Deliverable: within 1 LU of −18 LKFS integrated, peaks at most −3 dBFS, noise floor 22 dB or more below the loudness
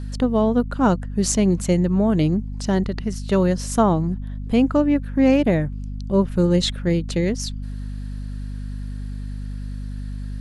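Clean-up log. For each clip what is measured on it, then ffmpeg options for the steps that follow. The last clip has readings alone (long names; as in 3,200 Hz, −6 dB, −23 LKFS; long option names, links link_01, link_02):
mains hum 50 Hz; hum harmonics up to 250 Hz; level of the hum −27 dBFS; integrated loudness −20.5 LKFS; sample peak −6.5 dBFS; target loudness −18.0 LKFS
→ -af "bandreject=frequency=50:width_type=h:width=4,bandreject=frequency=100:width_type=h:width=4,bandreject=frequency=150:width_type=h:width=4,bandreject=frequency=200:width_type=h:width=4,bandreject=frequency=250:width_type=h:width=4"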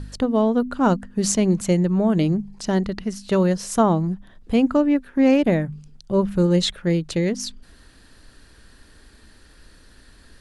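mains hum none found; integrated loudness −21.0 LKFS; sample peak −6.5 dBFS; target loudness −18.0 LKFS
→ -af "volume=3dB"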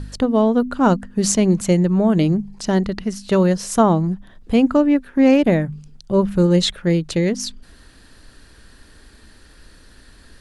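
integrated loudness −18.0 LKFS; sample peak −3.5 dBFS; background noise floor −48 dBFS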